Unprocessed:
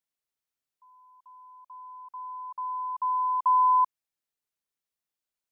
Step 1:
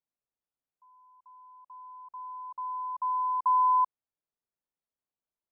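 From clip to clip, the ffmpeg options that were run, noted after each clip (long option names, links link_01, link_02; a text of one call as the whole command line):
ffmpeg -i in.wav -af "lowpass=1100" out.wav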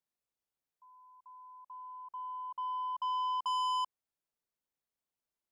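ffmpeg -i in.wav -af "asoftclip=type=tanh:threshold=-31dB" out.wav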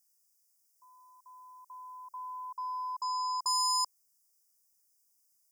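ffmpeg -i in.wav -af "asuperstop=centerf=3300:order=20:qfactor=1.3,aexciter=amount=3.4:drive=10:freq=2900" out.wav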